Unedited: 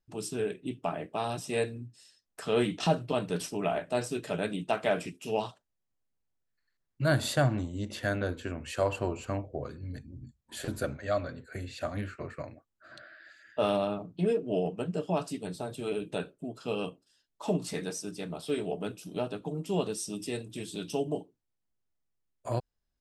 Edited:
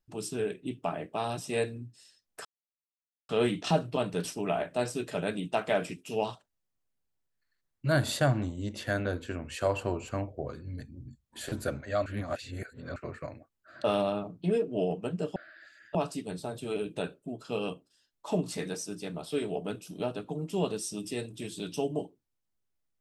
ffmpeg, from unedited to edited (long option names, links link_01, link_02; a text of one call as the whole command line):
ffmpeg -i in.wav -filter_complex "[0:a]asplit=7[link_01][link_02][link_03][link_04][link_05][link_06][link_07];[link_01]atrim=end=2.45,asetpts=PTS-STARTPTS,afade=type=out:start_time=2.446:duration=0.004:curve=hsin,apad=pad_dur=0.84[link_08];[link_02]atrim=start=2.45:end=11.222,asetpts=PTS-STARTPTS,afade=type=in:duration=0.004:curve=hsin[link_09];[link_03]atrim=start=11.218:end=12.122,asetpts=PTS-STARTPTS,areverse[link_10];[link_04]atrim=start=12.118:end=13.002[link_11];[link_05]atrim=start=13.588:end=15.112[link_12];[link_06]atrim=start=12.998:end=13.592[link_13];[link_07]atrim=start=15.108[link_14];[link_08][link_09]concat=n=2:v=0:a=1[link_15];[link_15][link_10]acrossfade=duration=0.004:curve1=hsin:curve2=hsin[link_16];[link_16][link_11]acrossfade=duration=0.004:curve1=hsin:curve2=hsin[link_17];[link_17][link_12]acrossfade=duration=0.004:curve1=hsin:curve2=hsin[link_18];[link_18][link_13]acrossfade=duration=0.004:curve1=hsin:curve2=hsin[link_19];[link_19][link_14]acrossfade=duration=0.004:curve1=hsin:curve2=hsin" out.wav